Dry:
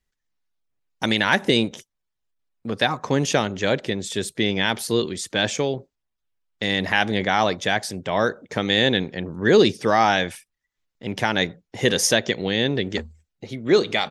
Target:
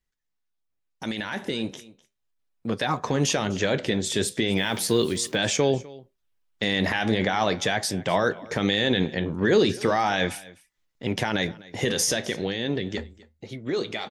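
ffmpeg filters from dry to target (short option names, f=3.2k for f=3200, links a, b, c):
-filter_complex "[0:a]alimiter=limit=-14.5dB:level=0:latency=1:release=34,flanger=delay=5.7:depth=9:regen=-71:speed=0.37:shape=triangular,aecho=1:1:252:0.0891,dynaudnorm=f=400:g=13:m=7.5dB,asettb=1/sr,asplit=3[a][b][c];[a]atrim=end=4.574[d];[b]atrim=start=4.57:end=5.36,asetpts=PTS-STARTPTS,afade=t=in:d=0.004:c=qsin,afade=t=out:st=0.786:d=0.004:c=qsin,acrusher=bits=7:mix=0:aa=0.5[e];[c]atrim=start=5.356[f];[d][e]acrossfade=d=0.004:c1=hsin:c2=qsin[g];[g][f]acrossfade=d=0.004:c1=qsin:c2=hsin"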